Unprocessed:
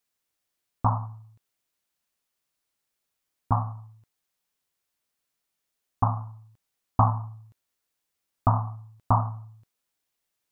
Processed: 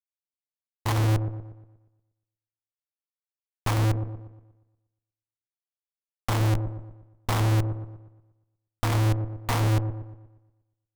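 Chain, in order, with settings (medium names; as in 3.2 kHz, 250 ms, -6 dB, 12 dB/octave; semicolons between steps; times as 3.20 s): local Wiener filter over 25 samples; bass shelf 87 Hz +3 dB; waveshaping leveller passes 3; Schmitt trigger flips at -25.5 dBFS; tempo 0.96×; feedback echo behind a low-pass 119 ms, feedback 45%, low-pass 800 Hz, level -7 dB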